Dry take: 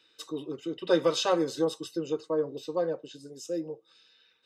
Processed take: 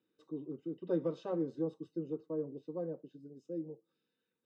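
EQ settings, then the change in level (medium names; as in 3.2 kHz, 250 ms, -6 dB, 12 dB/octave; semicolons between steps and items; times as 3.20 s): band-pass filter 200 Hz, Q 1.4; -1.0 dB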